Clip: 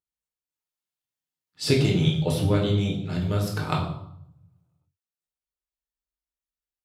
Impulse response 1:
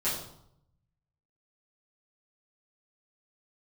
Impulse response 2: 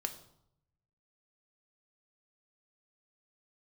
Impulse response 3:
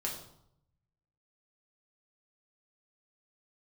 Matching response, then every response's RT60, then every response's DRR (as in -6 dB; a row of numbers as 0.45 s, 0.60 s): 3; 0.75 s, 0.75 s, 0.75 s; -11.5 dB, 6.0 dB, -2.5 dB